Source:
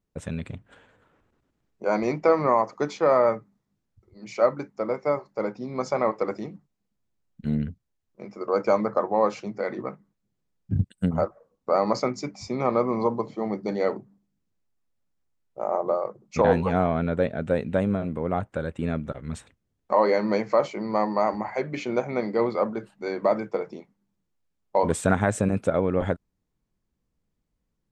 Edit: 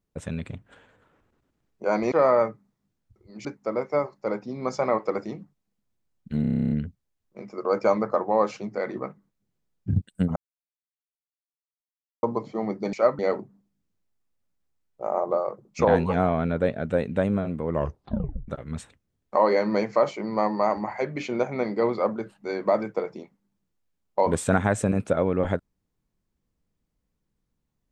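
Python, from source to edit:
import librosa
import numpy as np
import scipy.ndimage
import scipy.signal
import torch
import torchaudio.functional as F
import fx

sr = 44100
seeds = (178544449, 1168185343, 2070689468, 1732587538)

y = fx.edit(x, sr, fx.cut(start_s=2.12, length_s=0.87),
    fx.move(start_s=4.32, length_s=0.26, to_s=13.76),
    fx.stutter(start_s=7.54, slice_s=0.03, count=11),
    fx.silence(start_s=11.19, length_s=1.87),
    fx.tape_stop(start_s=18.23, length_s=0.82), tone=tone)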